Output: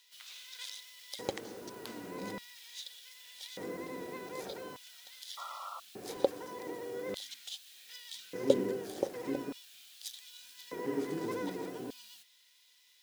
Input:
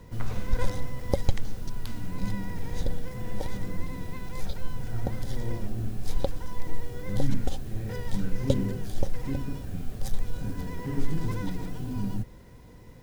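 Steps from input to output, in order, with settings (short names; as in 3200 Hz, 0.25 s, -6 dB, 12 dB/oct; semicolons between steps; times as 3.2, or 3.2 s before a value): painted sound noise, 5.37–5.8, 510–1400 Hz -22 dBFS; LFO high-pass square 0.42 Hz 380–3400 Hz; gain -2 dB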